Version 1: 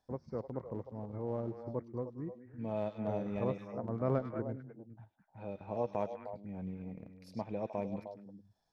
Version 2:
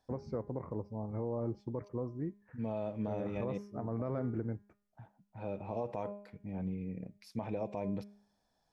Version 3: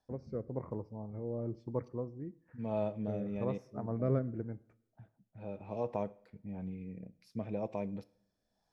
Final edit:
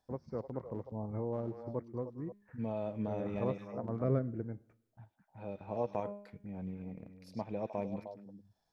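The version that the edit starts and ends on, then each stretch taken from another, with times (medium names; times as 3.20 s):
1
0.92–1.33 s: from 2
2.32–3.34 s: from 2
4.04–4.97 s: from 3
6.00–6.45 s: from 2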